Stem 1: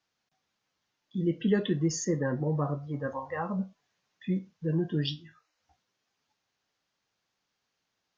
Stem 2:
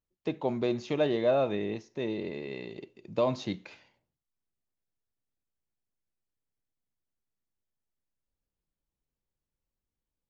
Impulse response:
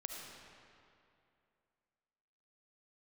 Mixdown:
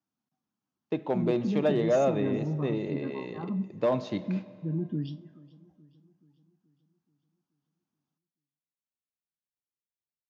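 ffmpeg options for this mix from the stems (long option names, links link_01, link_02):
-filter_complex "[0:a]equalizer=frequency=250:width_type=o:width=1:gain=10,equalizer=frequency=500:width_type=o:width=1:gain=-11,equalizer=frequency=2000:width_type=o:width=1:gain=-12,equalizer=frequency=4000:width_type=o:width=1:gain=-7,alimiter=limit=-20dB:level=0:latency=1,volume=-3.5dB,asplit=3[link_01][link_02][link_03];[link_02]volume=-21.5dB[link_04];[link_03]volume=-21dB[link_05];[1:a]asoftclip=type=hard:threshold=-20dB,agate=range=-18dB:threshold=-52dB:ratio=16:detection=peak,adelay=650,volume=0.5dB,asplit=2[link_06][link_07];[link_07]volume=-10dB[link_08];[2:a]atrim=start_sample=2205[link_09];[link_04][link_08]amix=inputs=2:normalize=0[link_10];[link_10][link_09]afir=irnorm=-1:irlink=0[link_11];[link_05]aecho=0:1:429|858|1287|1716|2145|2574|3003|3432:1|0.52|0.27|0.141|0.0731|0.038|0.0198|0.0103[link_12];[link_01][link_06][link_11][link_12]amix=inputs=4:normalize=0,highpass=99,highshelf=frequency=3200:gain=-10"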